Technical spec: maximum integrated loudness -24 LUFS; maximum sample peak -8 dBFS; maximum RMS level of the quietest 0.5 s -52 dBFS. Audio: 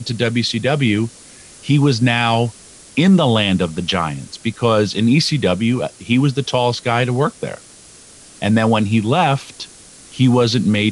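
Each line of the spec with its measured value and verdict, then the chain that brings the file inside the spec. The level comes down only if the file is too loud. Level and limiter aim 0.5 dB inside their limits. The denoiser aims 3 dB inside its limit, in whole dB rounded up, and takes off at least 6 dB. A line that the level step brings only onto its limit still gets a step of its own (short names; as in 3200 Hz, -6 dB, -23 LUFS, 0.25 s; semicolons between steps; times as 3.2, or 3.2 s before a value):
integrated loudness -16.5 LUFS: fail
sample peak -4.0 dBFS: fail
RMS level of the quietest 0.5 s -43 dBFS: fail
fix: denoiser 6 dB, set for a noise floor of -43 dBFS; gain -8 dB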